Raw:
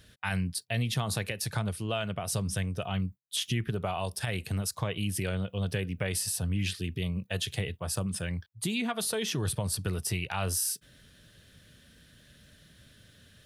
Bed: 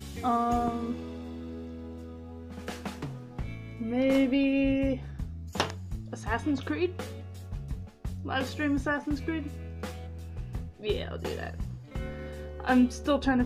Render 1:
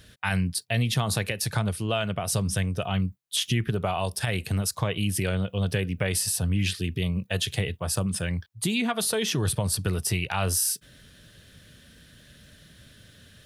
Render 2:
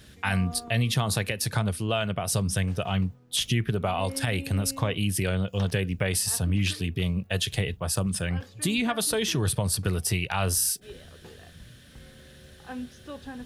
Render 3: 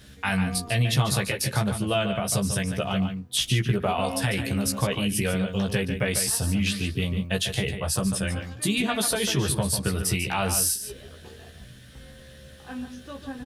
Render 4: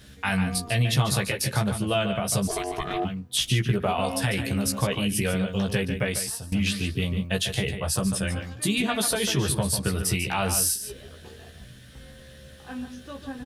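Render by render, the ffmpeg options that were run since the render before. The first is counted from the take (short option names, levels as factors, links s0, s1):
-af "volume=1.78"
-filter_complex "[1:a]volume=0.188[s0];[0:a][s0]amix=inputs=2:normalize=0"
-filter_complex "[0:a]asplit=2[s0][s1];[s1]adelay=15,volume=0.668[s2];[s0][s2]amix=inputs=2:normalize=0,asplit=2[s3][s4];[s4]adelay=145.8,volume=0.398,highshelf=f=4000:g=-3.28[s5];[s3][s5]amix=inputs=2:normalize=0"
-filter_complex "[0:a]asplit=3[s0][s1][s2];[s0]afade=t=out:st=2.47:d=0.02[s3];[s1]aeval=exprs='val(0)*sin(2*PI*540*n/s)':c=same,afade=t=in:st=2.47:d=0.02,afade=t=out:st=3.04:d=0.02[s4];[s2]afade=t=in:st=3.04:d=0.02[s5];[s3][s4][s5]amix=inputs=3:normalize=0,asplit=2[s6][s7];[s6]atrim=end=6.52,asetpts=PTS-STARTPTS,afade=t=out:st=5.99:d=0.53:silence=0.125893[s8];[s7]atrim=start=6.52,asetpts=PTS-STARTPTS,afade=t=in:d=0.004:c=hsin:silence=0.125893[s9];[s8][s9]concat=n=2:v=0:a=1"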